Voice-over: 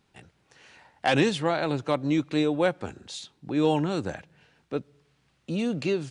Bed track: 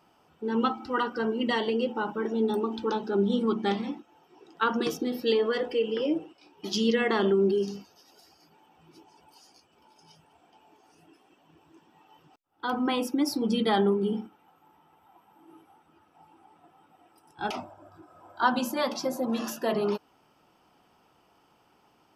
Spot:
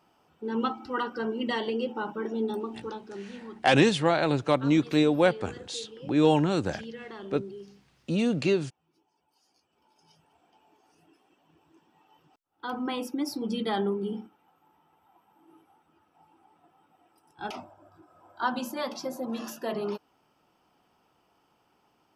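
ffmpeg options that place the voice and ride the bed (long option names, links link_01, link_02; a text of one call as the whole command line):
ffmpeg -i stem1.wav -i stem2.wav -filter_complex "[0:a]adelay=2600,volume=2dB[link_01];[1:a]volume=10dB,afade=type=out:start_time=2.34:duration=0.9:silence=0.188365,afade=type=in:start_time=9.28:duration=1.02:silence=0.237137[link_02];[link_01][link_02]amix=inputs=2:normalize=0" out.wav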